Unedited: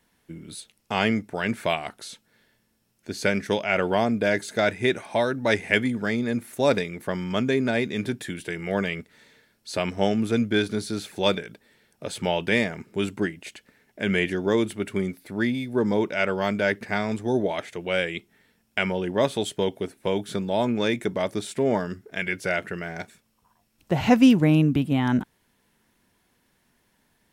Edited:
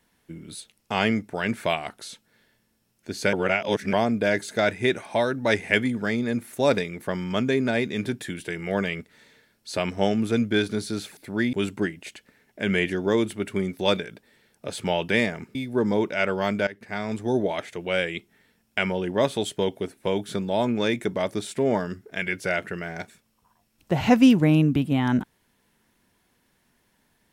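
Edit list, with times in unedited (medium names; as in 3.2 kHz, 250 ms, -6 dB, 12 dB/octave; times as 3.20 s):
3.33–3.93 s: reverse
11.17–12.93 s: swap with 15.19–15.55 s
16.67–17.23 s: fade in, from -19.5 dB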